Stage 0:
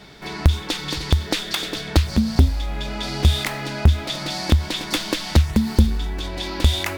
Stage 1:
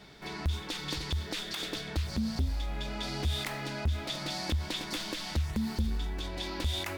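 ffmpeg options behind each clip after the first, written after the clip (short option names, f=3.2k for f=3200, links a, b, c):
-af "alimiter=limit=-14dB:level=0:latency=1:release=64,volume=-8.5dB"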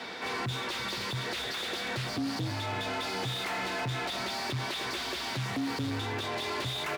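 -filter_complex "[0:a]aecho=1:1:329:0.141,asplit=2[a][b];[b]highpass=f=720:p=1,volume=29dB,asoftclip=type=tanh:threshold=-22dB[c];[a][c]amix=inputs=2:normalize=0,lowpass=f=2.3k:p=1,volume=-6dB,afreqshift=52,volume=-3dB"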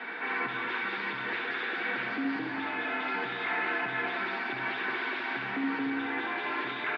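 -filter_complex "[0:a]highpass=f=220:w=0.5412,highpass=f=220:w=1.3066,equalizer=f=580:t=q:w=4:g=-8,equalizer=f=1.6k:t=q:w=4:g=8,equalizer=f=2.3k:t=q:w=4:g=3,lowpass=f=2.7k:w=0.5412,lowpass=f=2.7k:w=1.3066,asplit=2[a][b];[b]aecho=0:1:70|182|361.2|647.9|1107:0.631|0.398|0.251|0.158|0.1[c];[a][c]amix=inputs=2:normalize=0" -ar 44100 -c:a libmp3lame -b:a 48k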